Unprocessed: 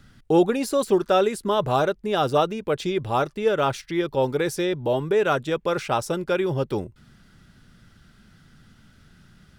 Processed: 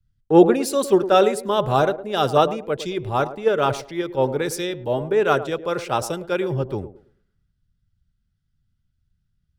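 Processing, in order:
on a send: feedback echo with a band-pass in the loop 110 ms, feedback 45%, band-pass 440 Hz, level −9 dB
on the sum: multiband upward and downward expander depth 100%
level +1 dB

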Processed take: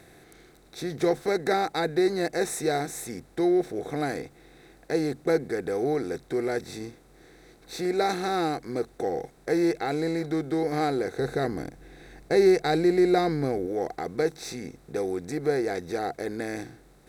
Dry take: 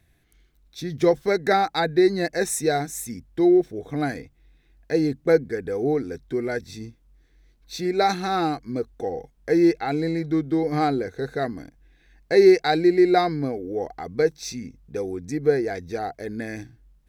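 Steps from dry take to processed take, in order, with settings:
compressor on every frequency bin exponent 0.6
0:11.19–0:13.67: low-shelf EQ 170 Hz +9.5 dB
level −8 dB

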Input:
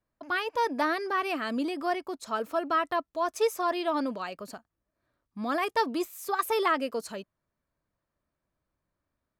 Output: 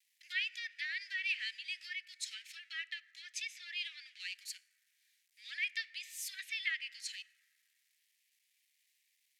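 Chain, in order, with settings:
mu-law and A-law mismatch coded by mu
treble cut that deepens with the level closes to 2,900 Hz, closed at −23.5 dBFS
Butterworth high-pass 1,900 Hz 72 dB per octave
dense smooth reverb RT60 2.7 s, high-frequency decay 0.25×, DRR 17 dB
level +1.5 dB

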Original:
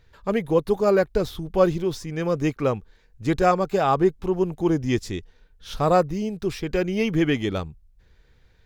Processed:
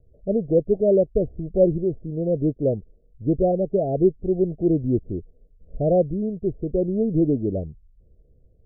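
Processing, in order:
Butterworth low-pass 680 Hz 96 dB per octave
level +1.5 dB

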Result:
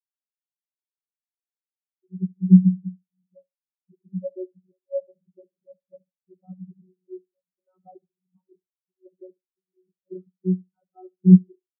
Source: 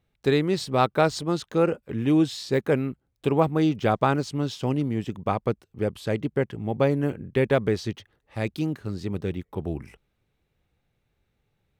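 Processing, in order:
played backwards from end to start
in parallel at +2 dB: compressor whose output falls as the input rises −25 dBFS, ratio −1
on the sum: channel vocoder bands 32, saw 185 Hz
gain into a clipping stage and back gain 8.5 dB
on a send: repeating echo 71 ms, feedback 53%, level −8 dB
on the sum: every bin expanded away from the loudest bin 4 to 1
level +4 dB

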